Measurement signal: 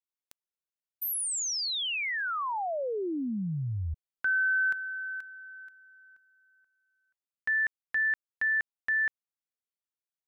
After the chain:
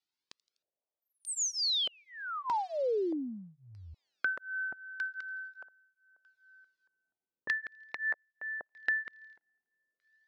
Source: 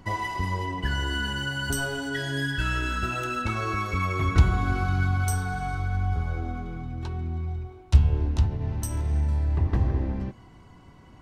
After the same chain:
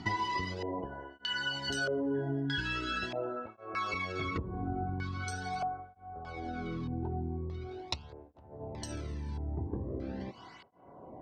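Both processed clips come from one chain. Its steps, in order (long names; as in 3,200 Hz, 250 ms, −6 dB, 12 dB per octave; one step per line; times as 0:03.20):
delay with a high-pass on its return 83 ms, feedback 83%, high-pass 4,400 Hz, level −21 dB
auto-filter low-pass square 0.8 Hz 610–4,600 Hz
downward compressor 6 to 1, threshold −35 dBFS
through-zero flanger with one copy inverted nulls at 0.42 Hz, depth 1.9 ms
level +7 dB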